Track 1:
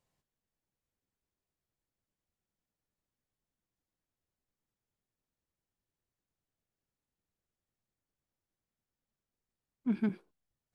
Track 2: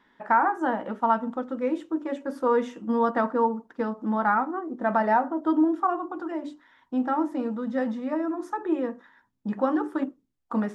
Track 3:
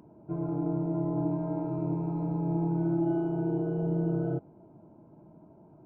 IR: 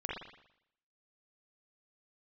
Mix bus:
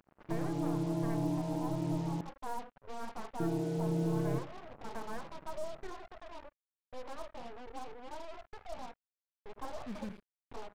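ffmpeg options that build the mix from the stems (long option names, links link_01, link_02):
-filter_complex "[0:a]aeval=exprs='clip(val(0),-1,0.015)':channel_layout=same,equalizer=frequency=390:width_type=o:width=1.6:gain=-9,volume=-5.5dB,asplit=3[link_01][link_02][link_03];[link_02]volume=-17.5dB[link_04];[link_03]volume=-16.5dB[link_05];[1:a]aeval=exprs='abs(val(0))':channel_layout=same,lowpass=frequency=940:width_type=q:width=2.2,volume=-17.5dB,asplit=2[link_06][link_07];[link_07]volume=-23.5dB[link_08];[2:a]bandreject=frequency=60:width_type=h:width=6,bandreject=frequency=120:width_type=h:width=6,bandreject=frequency=180:width_type=h:width=6,bandreject=frequency=240:width_type=h:width=6,bandreject=frequency=300:width_type=h:width=6,bandreject=frequency=360:width_type=h:width=6,bandreject=frequency=420:width_type=h:width=6,volume=-3dB,asplit=3[link_09][link_10][link_11];[link_09]atrim=end=2.21,asetpts=PTS-STARTPTS,afade=type=out:start_time=2.206:duration=0.004:curve=hsin[link_12];[link_10]atrim=start=2.21:end=3.4,asetpts=PTS-STARTPTS,volume=0[link_13];[link_11]atrim=start=3.4,asetpts=PTS-STARTPTS,afade=type=in:duration=0.004:curve=hsin[link_14];[link_12][link_13][link_14]concat=n=3:v=0:a=1,asplit=2[link_15][link_16];[link_16]volume=-13.5dB[link_17];[3:a]atrim=start_sample=2205[link_18];[link_04][link_18]afir=irnorm=-1:irlink=0[link_19];[link_05][link_08][link_17]amix=inputs=3:normalize=0,aecho=0:1:82:1[link_20];[link_01][link_06][link_15][link_19][link_20]amix=inputs=5:normalize=0,acrusher=bits=7:mix=0:aa=0.5"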